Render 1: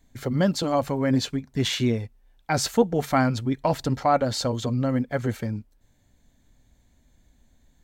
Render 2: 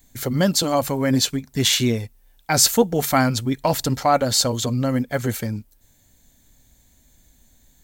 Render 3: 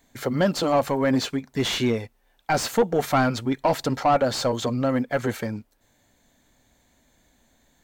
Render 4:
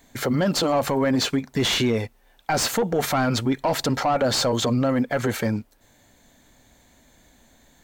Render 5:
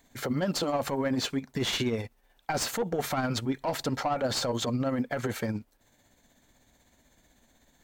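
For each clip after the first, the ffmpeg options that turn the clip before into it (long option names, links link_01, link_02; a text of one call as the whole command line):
ffmpeg -i in.wav -af "aemphasis=mode=production:type=75kf,volume=2.5dB" out.wav
ffmpeg -i in.wav -filter_complex "[0:a]asplit=2[link_01][link_02];[link_02]highpass=frequency=720:poles=1,volume=20dB,asoftclip=type=tanh:threshold=-1.5dB[link_03];[link_01][link_03]amix=inputs=2:normalize=0,lowpass=frequency=1100:poles=1,volume=-6dB,volume=-6.5dB" out.wav
ffmpeg -i in.wav -af "alimiter=limit=-21dB:level=0:latency=1:release=41,volume=6.5dB" out.wav
ffmpeg -i in.wav -af "tremolo=f=16:d=0.43,volume=-5.5dB" out.wav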